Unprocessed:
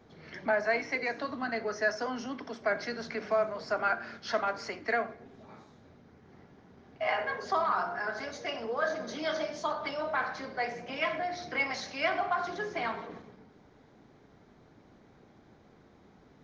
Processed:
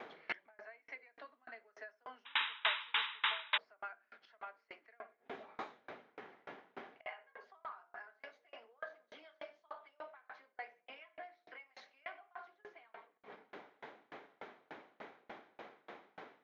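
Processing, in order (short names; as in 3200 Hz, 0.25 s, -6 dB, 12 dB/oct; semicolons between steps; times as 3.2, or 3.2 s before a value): HPF 520 Hz 12 dB/oct; resonant high shelf 4000 Hz -11.5 dB, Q 1.5; compressor 3:1, threshold -31 dBFS, peak gain reduction 7 dB; flipped gate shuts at -39 dBFS, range -26 dB; painted sound noise, 2.25–3.58, 840–3900 Hz -46 dBFS; dB-ramp tremolo decaying 3.4 Hz, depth 33 dB; gain +17.5 dB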